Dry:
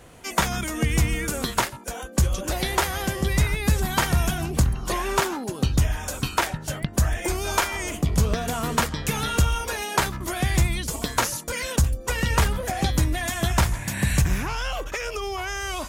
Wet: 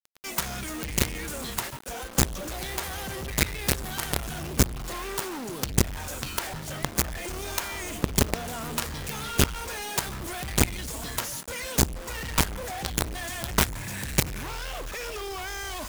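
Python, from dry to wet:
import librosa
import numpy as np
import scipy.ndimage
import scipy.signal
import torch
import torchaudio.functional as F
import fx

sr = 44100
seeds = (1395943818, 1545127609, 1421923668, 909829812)

y = fx.quant_companded(x, sr, bits=2)
y = y * librosa.db_to_amplitude(-8.5)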